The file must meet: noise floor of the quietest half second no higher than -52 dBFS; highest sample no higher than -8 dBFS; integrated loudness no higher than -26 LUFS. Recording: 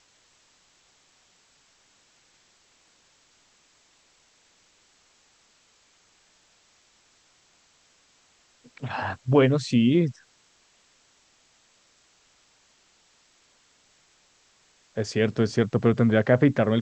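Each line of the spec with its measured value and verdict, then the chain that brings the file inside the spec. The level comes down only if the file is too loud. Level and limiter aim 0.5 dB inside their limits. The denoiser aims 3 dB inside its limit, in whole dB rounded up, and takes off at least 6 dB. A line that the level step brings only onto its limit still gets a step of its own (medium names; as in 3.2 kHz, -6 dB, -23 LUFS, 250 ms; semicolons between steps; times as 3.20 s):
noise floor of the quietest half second -63 dBFS: pass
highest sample -5.5 dBFS: fail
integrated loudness -23.0 LUFS: fail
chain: trim -3.5 dB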